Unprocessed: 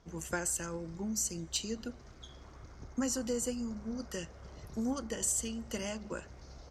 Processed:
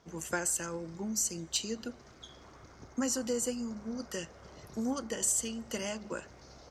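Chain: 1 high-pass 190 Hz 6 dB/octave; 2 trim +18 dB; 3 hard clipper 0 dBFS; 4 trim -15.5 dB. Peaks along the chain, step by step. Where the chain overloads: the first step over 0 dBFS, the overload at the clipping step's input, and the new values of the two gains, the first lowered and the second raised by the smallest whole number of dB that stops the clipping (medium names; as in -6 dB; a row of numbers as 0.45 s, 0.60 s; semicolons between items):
-21.0 dBFS, -3.0 dBFS, -3.0 dBFS, -18.5 dBFS; nothing clips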